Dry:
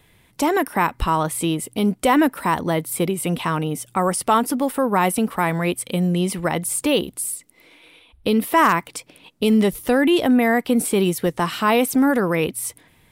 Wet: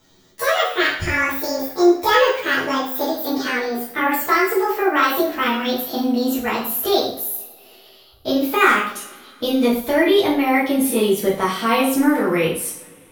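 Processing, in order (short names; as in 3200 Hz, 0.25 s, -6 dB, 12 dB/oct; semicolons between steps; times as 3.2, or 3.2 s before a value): gliding pitch shift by +11 st ending unshifted; two-slope reverb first 0.49 s, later 2.7 s, from -26 dB, DRR -8 dB; gain -6 dB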